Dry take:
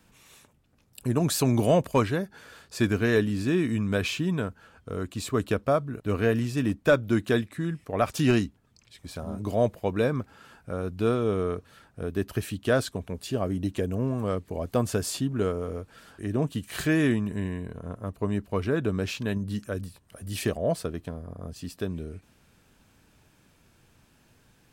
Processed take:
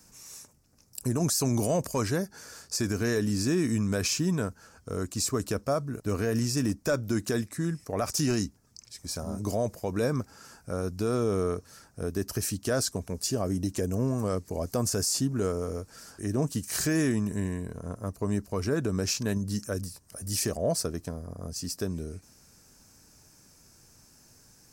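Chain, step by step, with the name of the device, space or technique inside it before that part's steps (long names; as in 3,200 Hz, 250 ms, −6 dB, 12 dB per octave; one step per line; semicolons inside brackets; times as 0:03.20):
over-bright horn tweeter (high shelf with overshoot 4,300 Hz +8.5 dB, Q 3; brickwall limiter −18 dBFS, peak gain reduction 11.5 dB)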